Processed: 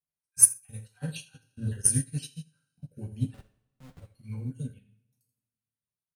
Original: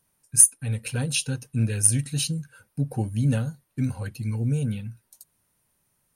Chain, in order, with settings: random holes in the spectrogram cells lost 35%; band-stop 7.1 kHz, Q 9.9; 3.34–4.00 s: Schmitt trigger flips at -36 dBFS; on a send: feedback delay 83 ms, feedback 32%, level -10 dB; on the sum: two-slope reverb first 0.41 s, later 1.7 s, from -18 dB, DRR -0.5 dB; upward expansion 2.5:1, over -33 dBFS; trim +1 dB

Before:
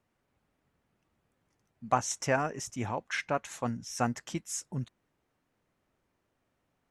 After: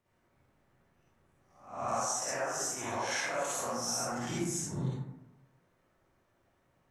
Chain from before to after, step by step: reverse spectral sustain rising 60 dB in 0.53 s; 1.88–4.00 s: tone controls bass -11 dB, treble +13 dB; compression 12:1, threshold -33 dBFS, peak gain reduction 16 dB; reverberation RT60 1.0 s, pre-delay 43 ms, DRR -8.5 dB; trim -5 dB

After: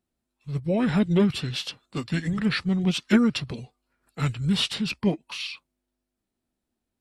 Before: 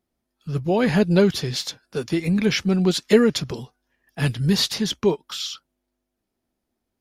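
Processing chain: formant shift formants -4 st; trim -3.5 dB

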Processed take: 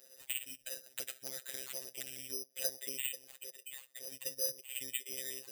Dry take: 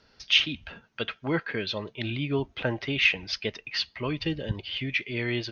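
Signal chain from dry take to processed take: treble shelf 2.4 kHz -8.5 dB; compression 12:1, threshold -40 dBFS, peak gain reduction 19.5 dB; 3.15–4.12 s: valve stage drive 49 dB, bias 0.4; vowel filter e; robot voice 131 Hz; careless resampling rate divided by 8×, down none, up zero stuff; 0.86–2.31 s: spectrum-flattening compressor 2:1; trim +9 dB

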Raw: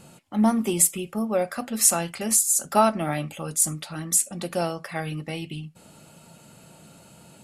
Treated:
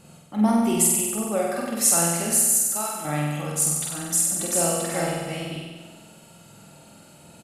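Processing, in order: 2.33–3.05 s: pre-emphasis filter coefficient 0.8; 4.00–4.67 s: echo throw 390 ms, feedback 20%, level -2.5 dB; flutter echo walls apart 8.1 m, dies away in 1.4 s; trim -2.5 dB

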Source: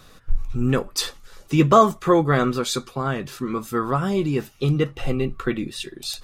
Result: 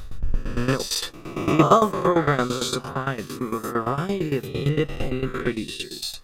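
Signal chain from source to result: reverse spectral sustain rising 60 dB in 0.90 s; tremolo saw down 8.8 Hz, depth 85%

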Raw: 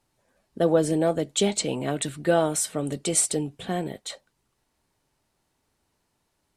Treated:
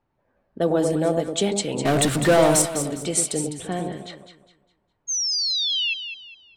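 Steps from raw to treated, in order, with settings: 1.85–2.62 s: power-law waveshaper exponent 0.5; 5.07–5.94 s: painted sound fall 2.6–6.6 kHz -24 dBFS; level-controlled noise filter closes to 1.8 kHz, open at -21 dBFS; on a send: echo whose repeats swap between lows and highs 102 ms, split 1.1 kHz, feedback 57%, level -4.5 dB

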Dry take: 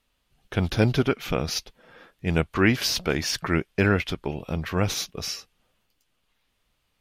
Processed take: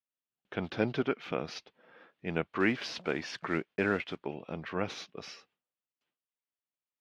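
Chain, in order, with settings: 2.60–4.18 s: block-companded coder 5-bit; gate with hold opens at -54 dBFS; band-pass 210–3000 Hz; trim -6.5 dB

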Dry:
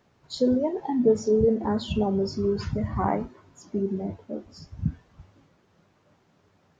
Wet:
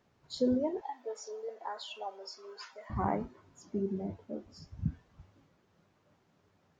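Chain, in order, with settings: 0.81–2.90 s: high-pass 650 Hz 24 dB/octave; trim -6.5 dB

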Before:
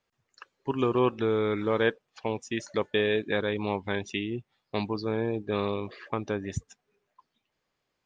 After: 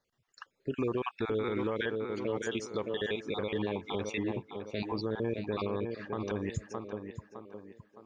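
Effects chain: random holes in the spectrogram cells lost 28%; 5.56–6.23 s: low-pass 3.8 kHz 6 dB/octave; tape echo 612 ms, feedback 47%, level -7 dB, low-pass 2 kHz; peak limiter -22.5 dBFS, peak gain reduction 10 dB

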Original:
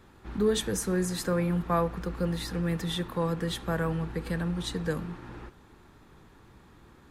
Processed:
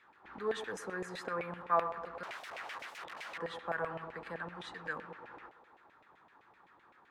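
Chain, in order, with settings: band-passed feedback delay 112 ms, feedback 67%, band-pass 610 Hz, level -10 dB; 2.23–3.38 s: integer overflow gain 34 dB; LFO band-pass saw down 7.8 Hz 660–2400 Hz; trim +2.5 dB

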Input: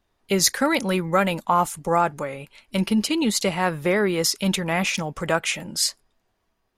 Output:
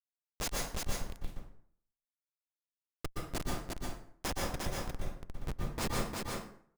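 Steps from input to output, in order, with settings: pre-emphasis filter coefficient 0.9; Schmitt trigger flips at -19 dBFS; on a send: delay 353 ms -3.5 dB; on the sum: plate-style reverb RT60 0.59 s, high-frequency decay 0.65×, pre-delay 110 ms, DRR -2 dB; trim -1.5 dB

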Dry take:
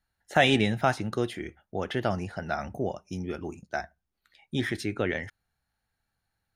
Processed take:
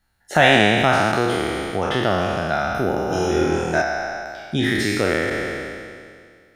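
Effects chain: spectral sustain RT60 2.11 s; in parallel at +2.5 dB: compression, threshold -29 dBFS, peak gain reduction 15.5 dB; 3.07–3.82 s: on the sum: flutter echo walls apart 4.2 m, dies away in 0.86 s; trim +1 dB

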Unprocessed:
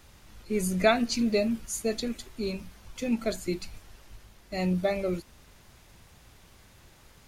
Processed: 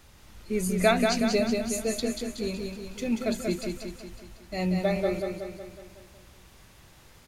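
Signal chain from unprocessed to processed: feedback delay 185 ms, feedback 54%, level -4.5 dB

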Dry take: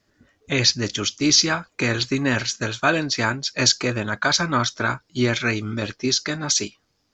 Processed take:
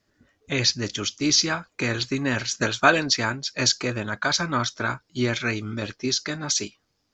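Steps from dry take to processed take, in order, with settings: 2.51–3.17 s: harmonic-percussive split percussive +7 dB; trim -3.5 dB

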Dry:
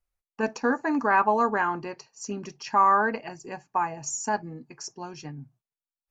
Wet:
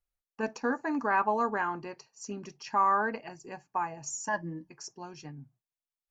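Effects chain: 4.27–4.69 s: rippled EQ curve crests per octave 1.2, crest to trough 17 dB; trim -5.5 dB

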